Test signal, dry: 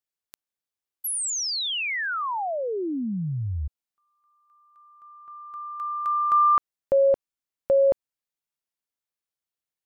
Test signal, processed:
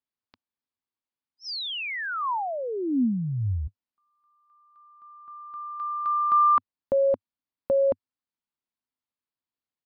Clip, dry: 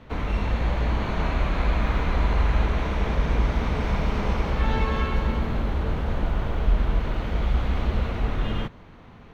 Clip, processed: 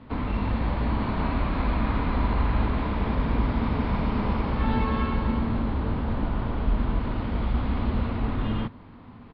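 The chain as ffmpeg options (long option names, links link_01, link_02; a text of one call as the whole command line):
ffmpeg -i in.wav -af "aresample=11025,aresample=44100,equalizer=frequency=100:width_type=o:width=0.67:gain=7,equalizer=frequency=250:width_type=o:width=0.67:gain=11,equalizer=frequency=1000:width_type=o:width=0.67:gain=6,volume=-4.5dB" out.wav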